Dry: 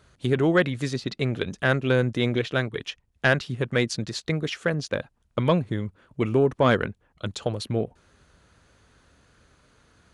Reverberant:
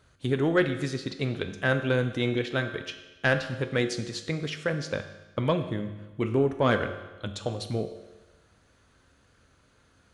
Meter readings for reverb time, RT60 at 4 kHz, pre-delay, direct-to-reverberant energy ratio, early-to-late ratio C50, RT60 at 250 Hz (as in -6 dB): 1.2 s, 1.1 s, 4 ms, 7.0 dB, 9.5 dB, 1.2 s